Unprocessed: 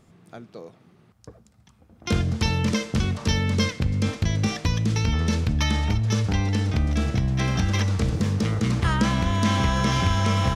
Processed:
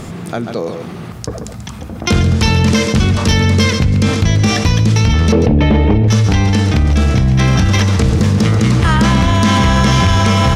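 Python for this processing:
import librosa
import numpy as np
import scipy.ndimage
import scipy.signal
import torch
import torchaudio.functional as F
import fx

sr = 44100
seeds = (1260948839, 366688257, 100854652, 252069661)

y = fx.curve_eq(x, sr, hz=(110.0, 450.0, 1200.0, 2500.0, 7100.0), db=(0, 15, -7, -2, -25), at=(5.32, 6.08))
y = y + 10.0 ** (-11.5 / 20.0) * np.pad(y, (int(138 * sr / 1000.0), 0))[:len(y)]
y = fx.fold_sine(y, sr, drive_db=4, ceiling_db=-7.5)
y = fx.env_flatten(y, sr, amount_pct=50)
y = y * 10.0 ** (2.0 / 20.0)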